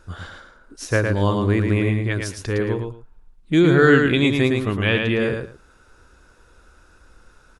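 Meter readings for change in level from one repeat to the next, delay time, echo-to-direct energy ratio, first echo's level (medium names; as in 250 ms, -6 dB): -14.0 dB, 111 ms, -4.5 dB, -4.5 dB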